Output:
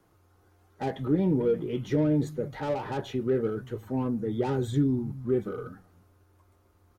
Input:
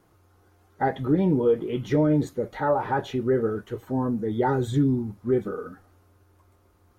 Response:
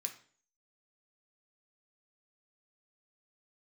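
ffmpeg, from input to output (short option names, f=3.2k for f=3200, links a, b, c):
-filter_complex "[0:a]acrossover=split=160|560|3300[a][b][c][d];[a]aecho=1:1:291:0.473[e];[c]asoftclip=type=tanh:threshold=-33dB[f];[e][b][f][d]amix=inputs=4:normalize=0,volume=-3dB"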